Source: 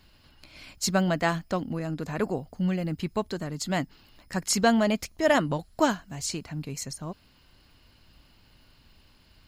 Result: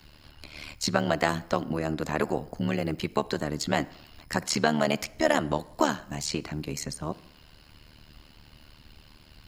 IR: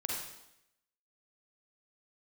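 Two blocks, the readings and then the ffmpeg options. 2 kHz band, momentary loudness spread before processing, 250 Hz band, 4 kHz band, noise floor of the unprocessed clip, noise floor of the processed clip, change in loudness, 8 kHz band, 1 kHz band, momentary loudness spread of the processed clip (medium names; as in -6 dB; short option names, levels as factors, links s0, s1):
+0.5 dB, 13 LU, -2.0 dB, +1.0 dB, -60 dBFS, -55 dBFS, -1.0 dB, -2.5 dB, +0.5 dB, 10 LU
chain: -filter_complex "[0:a]acrossover=split=240|590|4700[s0][s1][s2][s3];[s0]acompressor=threshold=0.00794:ratio=4[s4];[s1]acompressor=threshold=0.0178:ratio=4[s5];[s2]acompressor=threshold=0.0316:ratio=4[s6];[s3]acompressor=threshold=0.00708:ratio=4[s7];[s4][s5][s6][s7]amix=inputs=4:normalize=0,tremolo=f=75:d=0.889,asplit=2[s8][s9];[1:a]atrim=start_sample=2205,highshelf=f=4200:g=-10[s10];[s9][s10]afir=irnorm=-1:irlink=0,volume=0.106[s11];[s8][s11]amix=inputs=2:normalize=0,volume=2.66"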